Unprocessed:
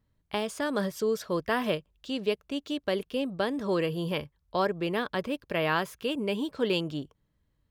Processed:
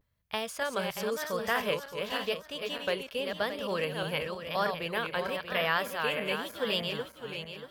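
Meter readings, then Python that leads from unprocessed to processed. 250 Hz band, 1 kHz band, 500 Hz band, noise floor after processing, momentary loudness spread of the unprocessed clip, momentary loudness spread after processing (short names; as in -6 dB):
-9.0 dB, 0.0 dB, -2.5 dB, -53 dBFS, 6 LU, 7 LU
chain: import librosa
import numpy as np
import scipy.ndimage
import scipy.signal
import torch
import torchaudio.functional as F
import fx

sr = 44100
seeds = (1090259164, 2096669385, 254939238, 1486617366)

y = fx.reverse_delay_fb(x, sr, ms=310, feedback_pct=59, wet_db=-5.0)
y = scipy.signal.sosfilt(scipy.signal.butter(2, 60.0, 'highpass', fs=sr, output='sos'), y)
y = fx.tone_stack(y, sr, knobs='10-0-10')
y = fx.vibrato(y, sr, rate_hz=0.93, depth_cents=83.0)
y = fx.graphic_eq(y, sr, hz=(250, 500, 4000, 8000), db=(8, 7, -4, -7))
y = y * librosa.db_to_amplitude(6.5)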